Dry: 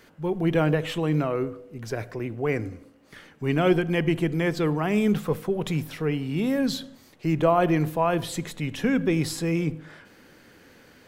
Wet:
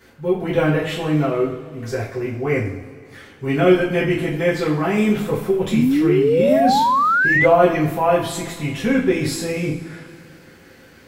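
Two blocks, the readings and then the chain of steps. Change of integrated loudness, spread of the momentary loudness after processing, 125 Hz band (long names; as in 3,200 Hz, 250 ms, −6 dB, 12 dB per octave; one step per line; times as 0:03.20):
+7.0 dB, 12 LU, +3.0 dB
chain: coupled-rooms reverb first 0.44 s, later 2.4 s, from −18 dB, DRR −9.5 dB
sound drawn into the spectrogram rise, 0:05.72–0:07.46, 210–2,100 Hz −12 dBFS
level −4 dB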